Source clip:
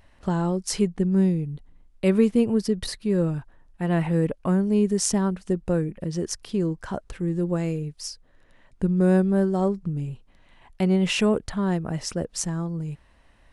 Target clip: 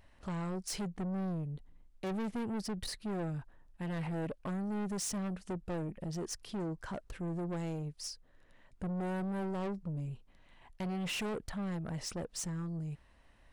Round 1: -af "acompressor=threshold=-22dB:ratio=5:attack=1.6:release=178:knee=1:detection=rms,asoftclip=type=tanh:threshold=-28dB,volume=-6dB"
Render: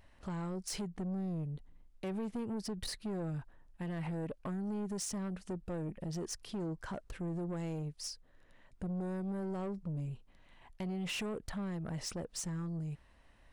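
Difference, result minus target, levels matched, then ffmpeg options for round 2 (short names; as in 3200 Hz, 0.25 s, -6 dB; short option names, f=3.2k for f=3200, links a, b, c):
compressor: peak gain reduction +10 dB
-af "asoftclip=type=tanh:threshold=-28dB,volume=-6dB"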